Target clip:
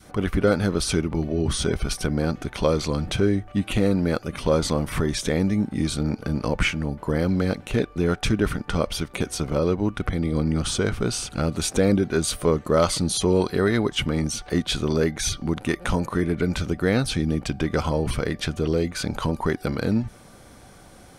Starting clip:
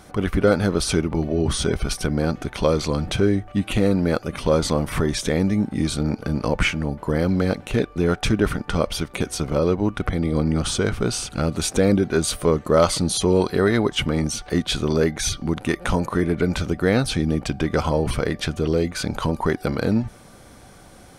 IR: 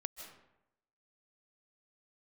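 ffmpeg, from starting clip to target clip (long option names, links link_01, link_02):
-af "adynamicequalizer=threshold=0.0251:dfrequency=700:dqfactor=0.87:tfrequency=700:tqfactor=0.87:attack=5:release=100:ratio=0.375:range=2:mode=cutabove:tftype=bell,volume=-1.5dB"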